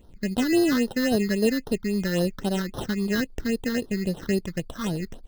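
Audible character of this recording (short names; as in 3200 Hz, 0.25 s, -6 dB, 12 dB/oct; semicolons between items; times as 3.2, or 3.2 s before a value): aliases and images of a low sample rate 2300 Hz, jitter 0%; phasing stages 6, 3.7 Hz, lowest notch 670–2300 Hz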